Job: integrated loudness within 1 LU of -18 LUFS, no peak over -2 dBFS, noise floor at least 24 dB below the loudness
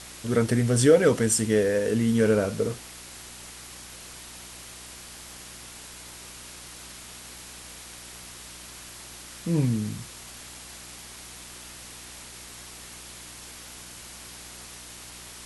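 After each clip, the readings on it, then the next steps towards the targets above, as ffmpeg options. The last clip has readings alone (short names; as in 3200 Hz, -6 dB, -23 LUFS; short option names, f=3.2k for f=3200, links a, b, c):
hum 60 Hz; harmonics up to 360 Hz; hum level -52 dBFS; noise floor -44 dBFS; noise floor target -48 dBFS; loudness -23.5 LUFS; peak -6.5 dBFS; loudness target -18.0 LUFS
-> -af "bandreject=f=60:t=h:w=4,bandreject=f=120:t=h:w=4,bandreject=f=180:t=h:w=4,bandreject=f=240:t=h:w=4,bandreject=f=300:t=h:w=4,bandreject=f=360:t=h:w=4"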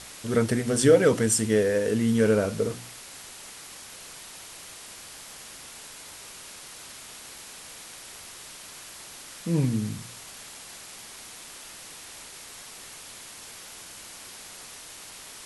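hum none; noise floor -44 dBFS; noise floor target -48 dBFS
-> -af "afftdn=nr=6:nf=-44"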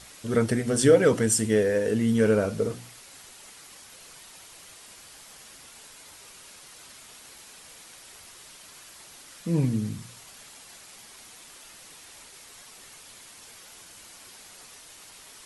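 noise floor -49 dBFS; loudness -23.5 LUFS; peak -6.5 dBFS; loudness target -18.0 LUFS
-> -af "volume=5.5dB,alimiter=limit=-2dB:level=0:latency=1"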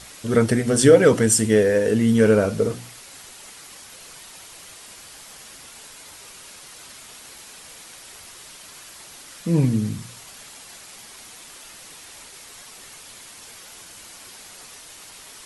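loudness -18.0 LUFS; peak -2.0 dBFS; noise floor -44 dBFS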